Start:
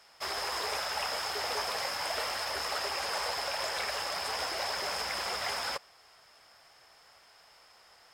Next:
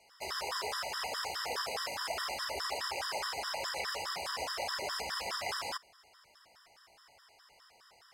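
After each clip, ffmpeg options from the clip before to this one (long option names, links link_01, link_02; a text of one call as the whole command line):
ffmpeg -i in.wav -af "afftfilt=real='re*gt(sin(2*PI*4.8*pts/sr)*(1-2*mod(floor(b*sr/1024/980),2)),0)':imag='im*gt(sin(2*PI*4.8*pts/sr)*(1-2*mod(floor(b*sr/1024/980),2)),0)':win_size=1024:overlap=0.75" out.wav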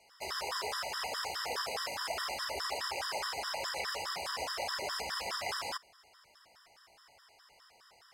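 ffmpeg -i in.wav -af anull out.wav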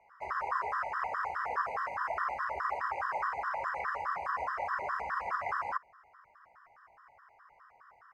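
ffmpeg -i in.wav -af "firequalizer=gain_entry='entry(100,0);entry(300,-7);entry(1100,10);entry(2200,-2);entry(3400,-29);entry(6100,-21);entry(9600,-28);entry(14000,-30)':delay=0.05:min_phase=1" out.wav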